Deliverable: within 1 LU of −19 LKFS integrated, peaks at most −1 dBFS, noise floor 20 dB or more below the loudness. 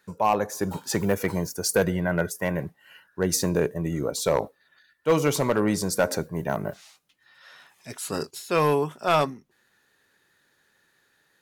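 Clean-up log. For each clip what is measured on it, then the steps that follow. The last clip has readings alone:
share of clipped samples 0.4%; peaks flattened at −13.0 dBFS; integrated loudness −25.5 LKFS; sample peak −13.0 dBFS; target loudness −19.0 LKFS
→ clipped peaks rebuilt −13 dBFS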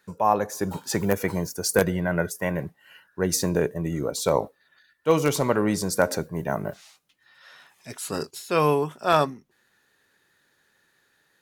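share of clipped samples 0.0%; integrated loudness −25.0 LKFS; sample peak −4.0 dBFS; target loudness −19.0 LKFS
→ level +6 dB
brickwall limiter −1 dBFS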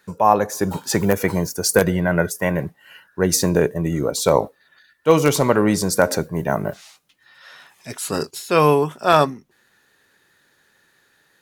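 integrated loudness −19.5 LKFS; sample peak −1.0 dBFS; background noise floor −62 dBFS

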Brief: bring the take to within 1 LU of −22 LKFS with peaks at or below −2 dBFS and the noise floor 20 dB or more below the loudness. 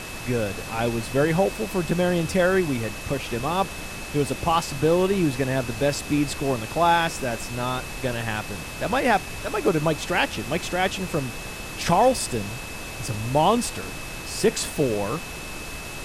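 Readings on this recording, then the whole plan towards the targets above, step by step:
interfering tone 2,600 Hz; level of the tone −39 dBFS; background noise floor −35 dBFS; target noise floor −45 dBFS; integrated loudness −24.5 LKFS; sample peak −7.5 dBFS; target loudness −22.0 LKFS
→ notch filter 2,600 Hz, Q 30
noise reduction from a noise print 10 dB
level +2.5 dB

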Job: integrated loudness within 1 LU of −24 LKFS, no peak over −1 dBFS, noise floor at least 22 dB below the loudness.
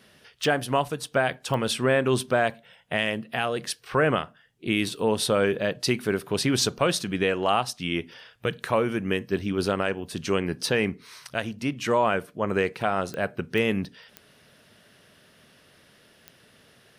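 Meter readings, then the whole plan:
number of clicks 6; integrated loudness −26.0 LKFS; sample peak −9.5 dBFS; target loudness −24.0 LKFS
→ click removal
level +2 dB

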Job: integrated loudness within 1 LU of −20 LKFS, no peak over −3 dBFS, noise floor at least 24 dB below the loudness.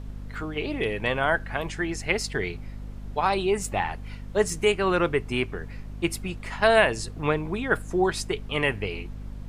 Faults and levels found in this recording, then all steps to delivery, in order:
mains hum 50 Hz; hum harmonics up to 250 Hz; level of the hum −35 dBFS; background noise floor −39 dBFS; target noise floor −50 dBFS; integrated loudness −26.0 LKFS; sample peak −5.0 dBFS; target loudness −20.0 LKFS
→ mains-hum notches 50/100/150/200/250 Hz
noise reduction from a noise print 11 dB
level +6 dB
brickwall limiter −3 dBFS

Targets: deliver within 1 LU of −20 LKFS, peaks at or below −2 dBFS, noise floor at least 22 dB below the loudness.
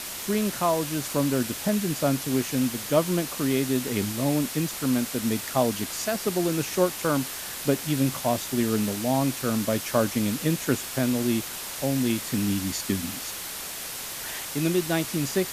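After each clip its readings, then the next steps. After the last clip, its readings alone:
background noise floor −35 dBFS; target noise floor −48 dBFS; integrated loudness −26.0 LKFS; sample peak −7.5 dBFS; target loudness −20.0 LKFS
→ broadband denoise 13 dB, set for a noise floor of −35 dBFS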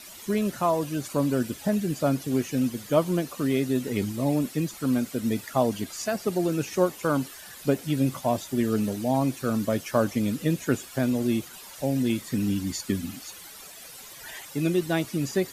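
background noise floor −45 dBFS; target noise floor −49 dBFS
→ broadband denoise 6 dB, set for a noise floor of −45 dBFS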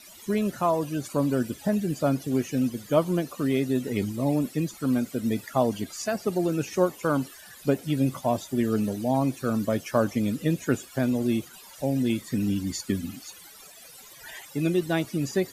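background noise floor −48 dBFS; target noise floor −49 dBFS
→ broadband denoise 6 dB, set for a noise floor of −48 dBFS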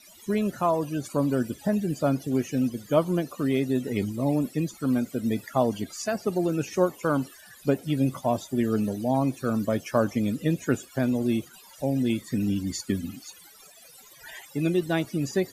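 background noise floor −51 dBFS; integrated loudness −27.0 LKFS; sample peak −8.0 dBFS; target loudness −20.0 LKFS
→ level +7 dB
brickwall limiter −2 dBFS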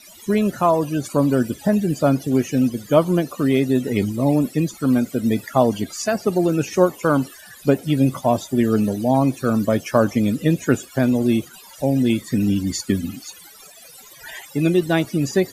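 integrated loudness −20.0 LKFS; sample peak −2.0 dBFS; background noise floor −44 dBFS

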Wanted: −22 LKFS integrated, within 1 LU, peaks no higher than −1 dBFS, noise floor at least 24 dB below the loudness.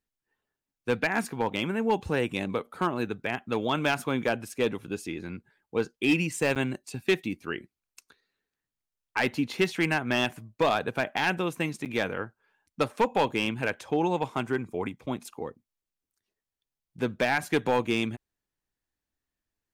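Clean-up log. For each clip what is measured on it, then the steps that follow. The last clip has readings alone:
share of clipped samples 0.4%; peaks flattened at −17.0 dBFS; number of dropouts 2; longest dropout 8.1 ms; integrated loudness −29.0 LKFS; sample peak −17.0 dBFS; target loudness −22.0 LKFS
→ clipped peaks rebuilt −17 dBFS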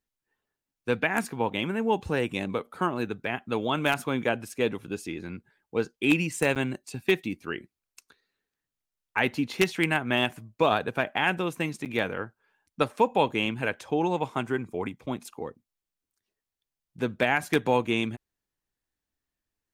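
share of clipped samples 0.0%; number of dropouts 2; longest dropout 8.1 ms
→ repair the gap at 0:06.55/0:11.85, 8.1 ms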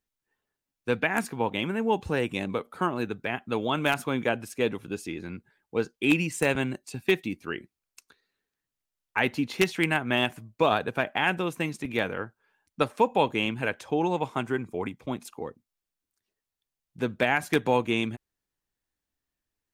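number of dropouts 0; integrated loudness −28.0 LKFS; sample peak −8.0 dBFS; target loudness −22.0 LKFS
→ level +6 dB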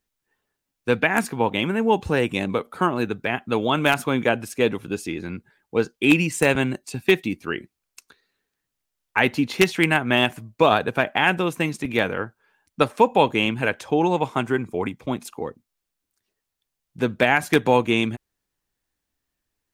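integrated loudness −22.0 LKFS; sample peak −2.0 dBFS; background noise floor −82 dBFS

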